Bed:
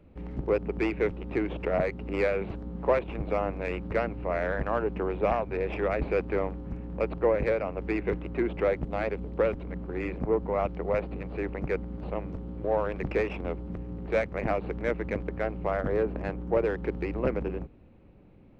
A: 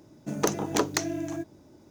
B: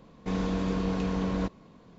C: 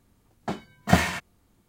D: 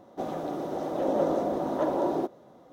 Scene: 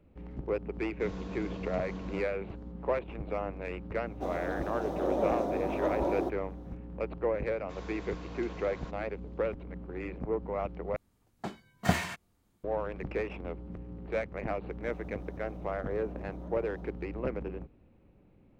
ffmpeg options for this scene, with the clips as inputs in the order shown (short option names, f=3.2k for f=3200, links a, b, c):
-filter_complex "[2:a]asplit=2[a][b];[4:a]asplit=2[c][d];[0:a]volume=-6dB[e];[b]highpass=600[f];[d]acompressor=threshold=-33dB:ratio=6:attack=3.2:release=140:knee=1:detection=peak[g];[e]asplit=2[h][i];[h]atrim=end=10.964[j];[3:a]atrim=end=1.68,asetpts=PTS-STARTPTS,volume=-7.5dB[k];[i]atrim=start=12.636[l];[a]atrim=end=1.98,asetpts=PTS-STARTPTS,volume=-11.5dB,afade=t=in:d=0.004:c=hsin,afade=t=out:st=1.976:d=0.004:c=hsin,adelay=740[m];[c]atrim=end=2.72,asetpts=PTS-STARTPTS,volume=-4dB,afade=t=in:d=0.004:c=hsin,afade=t=out:st=2.716:d=0.004:c=hsin,adelay=4030[n];[f]atrim=end=1.98,asetpts=PTS-STARTPTS,volume=-10dB,afade=t=in:d=0.004:c=hsin,afade=t=out:st=1.976:d=0.004:c=hsin,adelay=7430[o];[g]atrim=end=2.72,asetpts=PTS-STARTPTS,volume=-15dB,afade=t=in:d=0.004:c=hsin,afade=t=out:st=2.716:d=0.004:c=hsin,adelay=14650[p];[j][k]acrossfade=d=0.004:c1=hsin:c2=hsin[q];[q][l]acrossfade=d=0.004:c1=hsin:c2=hsin[r];[r][m][n][o][p]amix=inputs=5:normalize=0"